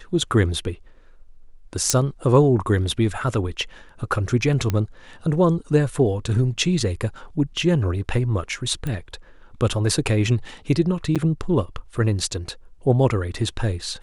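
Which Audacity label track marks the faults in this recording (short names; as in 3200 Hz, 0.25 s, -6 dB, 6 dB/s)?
1.900000	1.900000	pop -3 dBFS
4.700000	4.700000	pop -10 dBFS
8.870000	8.870000	pop -16 dBFS
11.150000	11.160000	gap 7 ms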